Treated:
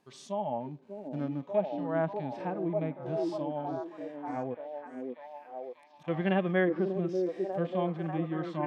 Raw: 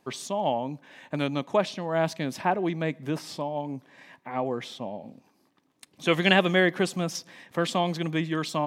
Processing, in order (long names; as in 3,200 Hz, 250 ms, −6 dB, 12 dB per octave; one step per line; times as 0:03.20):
0:00.60–0:01.43: running median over 25 samples
treble cut that deepens with the level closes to 1,800 Hz, closed at −22.5 dBFS
0:04.54–0:06.08: gate with flip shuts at −34 dBFS, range −29 dB
on a send: echo through a band-pass that steps 592 ms, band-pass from 340 Hz, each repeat 0.7 octaves, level 0 dB
on the sum: harmonic and percussive parts rebalanced percussive −17 dB
level −4 dB